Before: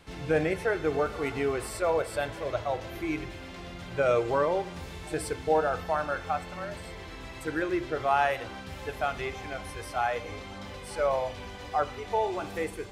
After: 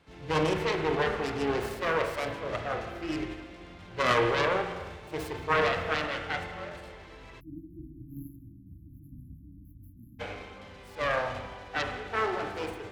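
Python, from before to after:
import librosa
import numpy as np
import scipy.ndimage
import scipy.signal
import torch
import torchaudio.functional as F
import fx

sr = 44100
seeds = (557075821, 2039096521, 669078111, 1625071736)

y = fx.self_delay(x, sr, depth_ms=0.75)
y = scipy.signal.sosfilt(scipy.signal.butter(2, 41.0, 'highpass', fs=sr, output='sos'), y)
y = fx.high_shelf(y, sr, hz=7600.0, db=-11.0)
y = fx.transient(y, sr, attack_db=-2, sustain_db=5)
y = y + 10.0 ** (-19.5 / 20.0) * np.pad(y, (int(165 * sr / 1000.0), 0))[:len(y)]
y = fx.rev_spring(y, sr, rt60_s=1.7, pass_ms=(32, 43), chirp_ms=60, drr_db=3.5)
y = fx.spec_erase(y, sr, start_s=7.4, length_s=2.8, low_hz=330.0, high_hz=11000.0)
y = fx.upward_expand(y, sr, threshold_db=-40.0, expansion=1.5)
y = F.gain(torch.from_numpy(y), 1.5).numpy()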